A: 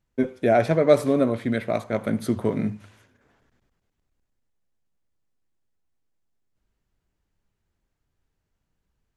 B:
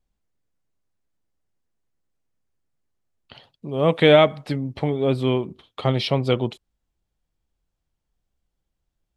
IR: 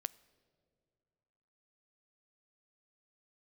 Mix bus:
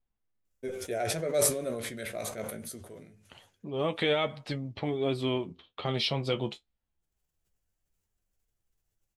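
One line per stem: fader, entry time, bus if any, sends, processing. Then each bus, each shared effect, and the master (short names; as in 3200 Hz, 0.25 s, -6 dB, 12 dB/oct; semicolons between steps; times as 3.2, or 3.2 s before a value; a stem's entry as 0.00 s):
-3.5 dB, 0.45 s, no send, graphic EQ 125/250/1000/2000/4000 Hz -6/-11/-11/-5/-7 dB; sustainer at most 46 dB/s; auto duck -18 dB, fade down 0.85 s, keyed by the second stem
-3.5 dB, 0.00 s, no send, low-pass opened by the level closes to 2300 Hz, open at -18 dBFS; high shelf 5300 Hz -5.5 dB; limiter -11 dBFS, peak gain reduction 9 dB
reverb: off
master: high shelf 2500 Hz +10.5 dB; flange 0.23 Hz, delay 8.3 ms, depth 6 ms, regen +46%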